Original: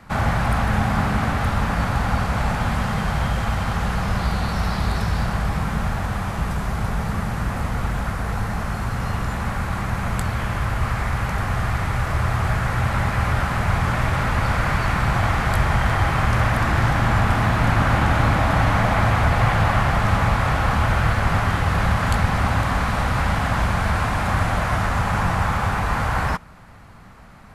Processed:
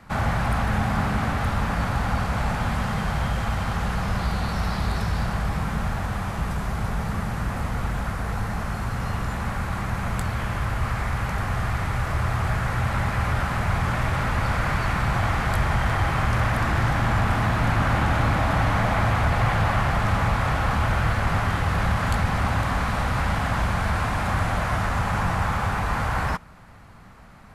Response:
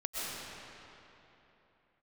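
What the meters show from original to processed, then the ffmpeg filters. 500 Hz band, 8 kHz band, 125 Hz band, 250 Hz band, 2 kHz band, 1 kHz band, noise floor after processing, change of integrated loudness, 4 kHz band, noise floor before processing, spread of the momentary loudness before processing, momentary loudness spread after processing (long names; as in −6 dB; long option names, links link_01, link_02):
−3.0 dB, −3.0 dB, −3.0 dB, −3.0 dB, −3.0 dB, −3.0 dB, −30 dBFS, −3.0 dB, −3.0 dB, −28 dBFS, 7 LU, 6 LU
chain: -af "acontrast=49,volume=-8.5dB"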